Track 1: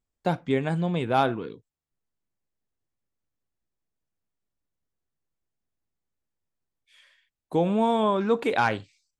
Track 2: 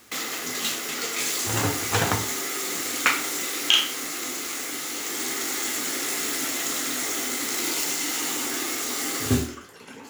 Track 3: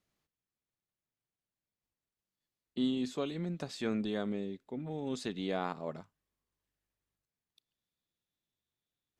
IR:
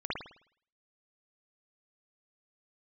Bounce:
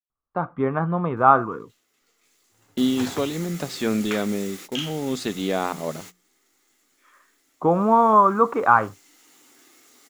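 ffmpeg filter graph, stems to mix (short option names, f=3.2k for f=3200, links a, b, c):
-filter_complex "[0:a]lowpass=f=1.2k:t=q:w=8.5,adelay=100,volume=-7dB[a];[1:a]adelay=1050,volume=-10dB,afade=t=in:st=7.61:d=0.39:silence=0.251189[b];[2:a]agate=range=-33dB:threshold=-50dB:ratio=3:detection=peak,bandreject=f=60:t=h:w=6,bandreject=f=120:t=h:w=6,bandreject=f=180:t=h:w=6,volume=0.5dB,asplit=2[c][d];[d]apad=whole_len=491419[e];[b][e]sidechaingate=range=-26dB:threshold=-53dB:ratio=16:detection=peak[f];[a][f][c]amix=inputs=3:normalize=0,dynaudnorm=f=150:g=7:m=10dB"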